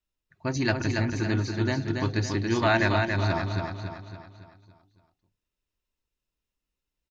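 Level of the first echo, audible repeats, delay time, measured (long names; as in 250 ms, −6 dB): −4.5 dB, 5, 280 ms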